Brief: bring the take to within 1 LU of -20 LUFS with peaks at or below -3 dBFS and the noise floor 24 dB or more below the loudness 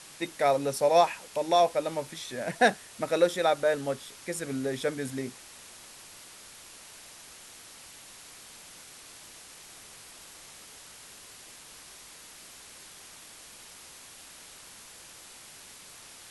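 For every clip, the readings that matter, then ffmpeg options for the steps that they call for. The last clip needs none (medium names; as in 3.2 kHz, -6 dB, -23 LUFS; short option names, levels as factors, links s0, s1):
noise floor -50 dBFS; noise floor target -52 dBFS; loudness -28.0 LUFS; peak level -9.5 dBFS; loudness target -20.0 LUFS
-> -af "afftdn=nr=6:nf=-50"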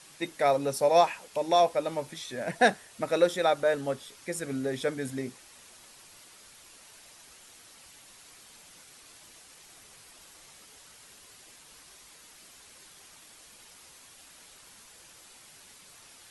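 noise floor -54 dBFS; loudness -28.0 LUFS; peak level -9.5 dBFS; loudness target -20.0 LUFS
-> -af "volume=2.51,alimiter=limit=0.708:level=0:latency=1"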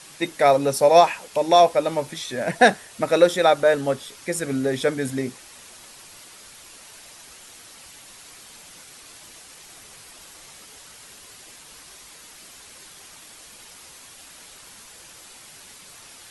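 loudness -20.0 LUFS; peak level -3.0 dBFS; noise floor -46 dBFS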